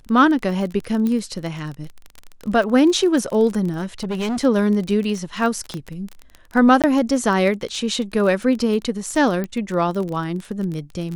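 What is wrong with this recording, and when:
surface crackle 26 per second −25 dBFS
0:01.07: click −13 dBFS
0:03.72–0:04.44: clipping −20.5 dBFS
0:05.74: click −15 dBFS
0:06.82–0:06.84: drop-out 17 ms
0:09.44: click −14 dBFS

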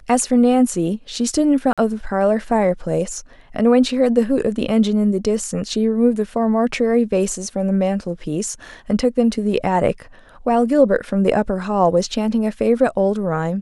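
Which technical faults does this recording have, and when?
0:01.73–0:01.78: drop-out 46 ms

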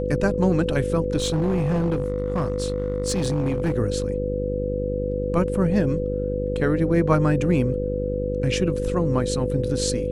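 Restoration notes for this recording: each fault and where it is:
mains buzz 50 Hz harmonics 11 −28 dBFS
whistle 500 Hz −27 dBFS
0:01.17–0:03.76: clipping −18 dBFS

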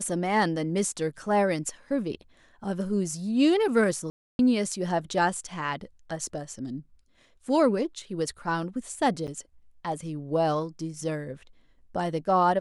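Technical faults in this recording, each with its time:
0:04.10–0:04.39: drop-out 291 ms
0:09.27–0:09.28: drop-out 7.9 ms

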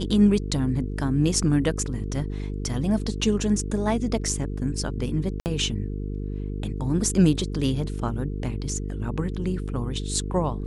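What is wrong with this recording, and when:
mains buzz 50 Hz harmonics 9 −30 dBFS
0:05.40–0:05.46: drop-out 59 ms

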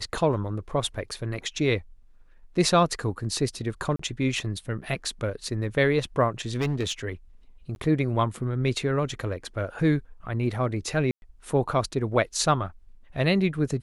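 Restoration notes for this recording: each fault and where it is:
0:03.96–0:03.99: drop-out 34 ms
0:06.55–0:06.92: clipping −21.5 dBFS
0:07.75–0:07.76: drop-out 11 ms
0:11.11–0:11.22: drop-out 111 ms

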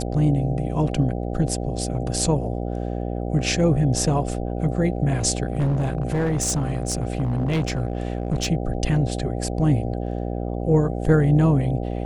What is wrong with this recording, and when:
mains buzz 60 Hz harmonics 13 −27 dBFS
0:05.45–0:08.48: clipping −18 dBFS

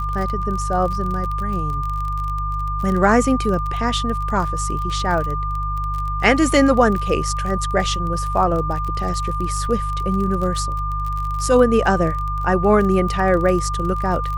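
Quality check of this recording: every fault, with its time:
surface crackle 30 per second −25 dBFS
mains hum 50 Hz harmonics 3 −25 dBFS
whistle 1,200 Hz −24 dBFS

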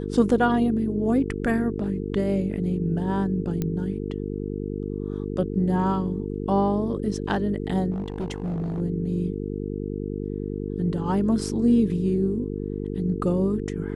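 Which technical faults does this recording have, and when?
mains buzz 50 Hz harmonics 9 −30 dBFS
0:03.62: click −14 dBFS
0:07.91–0:08.81: clipping −25 dBFS

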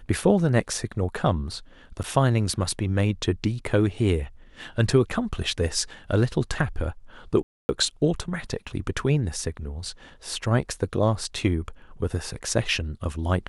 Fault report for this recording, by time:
0:02.03–0:02.04: drop-out 8.6 ms
0:07.43–0:07.69: drop-out 260 ms

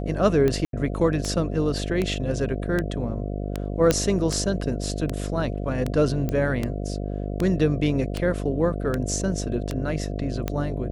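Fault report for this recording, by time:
mains buzz 50 Hz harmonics 14 −29 dBFS
scratch tick 78 rpm −12 dBFS
0:00.65–0:00.73: drop-out 82 ms
0:03.91: click −5 dBFS
0:06.29: click −14 dBFS

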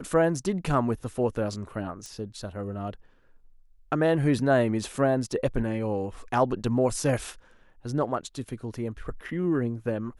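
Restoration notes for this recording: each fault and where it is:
0:02.06: click −26 dBFS

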